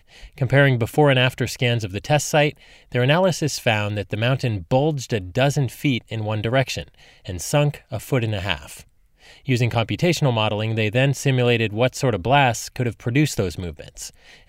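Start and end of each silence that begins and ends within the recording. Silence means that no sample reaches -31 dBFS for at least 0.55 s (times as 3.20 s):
8.80–9.48 s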